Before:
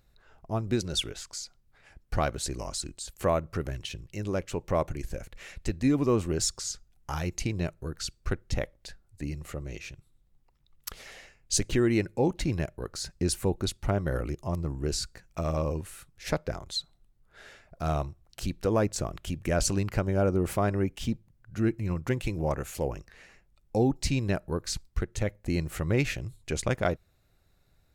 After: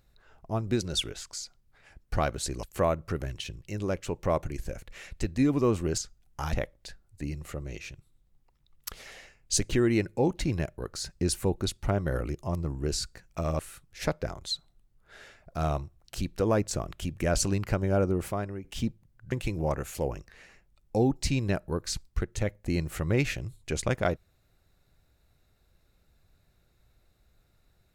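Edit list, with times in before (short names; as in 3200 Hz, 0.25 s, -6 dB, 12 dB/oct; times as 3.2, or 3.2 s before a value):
2.63–3.08 cut
6.43–6.68 cut
7.23–8.53 cut
15.59–15.84 cut
20.27–20.89 fade out, to -14.5 dB
21.57–22.12 cut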